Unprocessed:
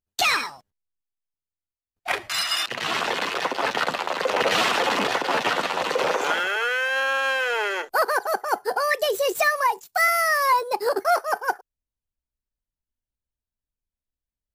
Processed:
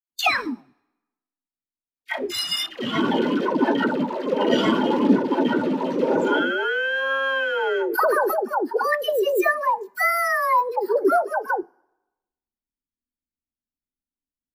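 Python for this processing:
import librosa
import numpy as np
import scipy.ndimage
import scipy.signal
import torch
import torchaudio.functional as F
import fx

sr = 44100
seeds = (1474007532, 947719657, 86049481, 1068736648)

y = fx.peak_eq(x, sr, hz=350.0, db=10.5, octaves=1.9)
y = fx.dispersion(y, sr, late='lows', ms=128.0, hz=570.0)
y = fx.rider(y, sr, range_db=10, speed_s=2.0)
y = fx.graphic_eq(y, sr, hz=(250, 500, 8000), db=(11, -8, -5))
y = fx.rev_plate(y, sr, seeds[0], rt60_s=1.1, hf_ratio=0.8, predelay_ms=0, drr_db=18.5)
y = fx.noise_reduce_blind(y, sr, reduce_db=14)
y = fx.sustainer(y, sr, db_per_s=28.0, at=(6.19, 8.37))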